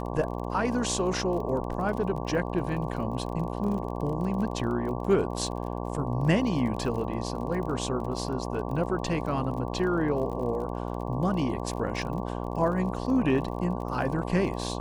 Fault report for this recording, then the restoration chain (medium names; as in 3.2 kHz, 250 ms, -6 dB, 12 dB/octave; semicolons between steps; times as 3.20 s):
buzz 60 Hz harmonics 19 -33 dBFS
crackle 33 per s -36 dBFS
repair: de-click; de-hum 60 Hz, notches 19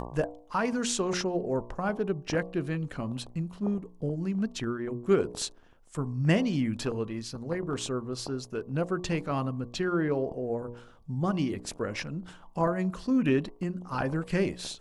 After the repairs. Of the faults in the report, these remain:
nothing left